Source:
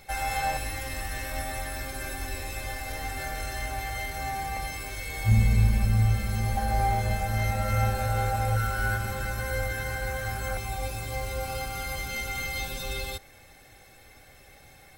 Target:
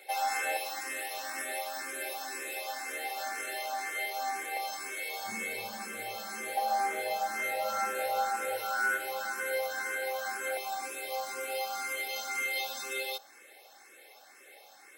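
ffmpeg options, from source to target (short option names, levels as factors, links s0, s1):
-filter_complex "[0:a]highpass=f=350:w=0.5412,highpass=f=350:w=1.3066,asplit=2[s0][s1];[s1]afreqshift=2[s2];[s0][s2]amix=inputs=2:normalize=1,volume=1.26"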